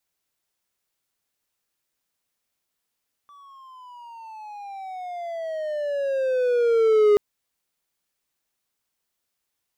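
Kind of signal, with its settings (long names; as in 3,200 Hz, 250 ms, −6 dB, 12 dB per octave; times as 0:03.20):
pitch glide with a swell triangle, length 3.88 s, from 1,160 Hz, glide −18 semitones, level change +33.5 dB, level −10.5 dB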